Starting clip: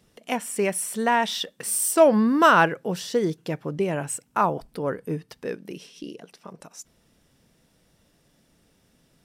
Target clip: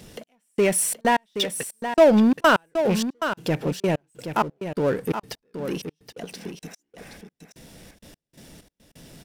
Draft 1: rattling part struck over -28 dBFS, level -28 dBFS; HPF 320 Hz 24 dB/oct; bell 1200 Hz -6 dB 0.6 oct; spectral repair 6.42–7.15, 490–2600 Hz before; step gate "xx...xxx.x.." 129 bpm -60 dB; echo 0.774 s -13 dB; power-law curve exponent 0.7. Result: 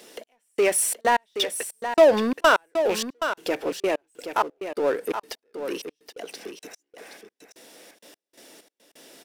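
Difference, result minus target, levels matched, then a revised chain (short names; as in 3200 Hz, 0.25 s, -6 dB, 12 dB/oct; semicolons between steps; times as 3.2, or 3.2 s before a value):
250 Hz band -6.5 dB
rattling part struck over -28 dBFS, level -28 dBFS; bell 1200 Hz -6 dB 0.6 oct; spectral repair 6.42–7.15, 490–2600 Hz before; step gate "xx...xxx.x.." 129 bpm -60 dB; echo 0.774 s -13 dB; power-law curve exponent 0.7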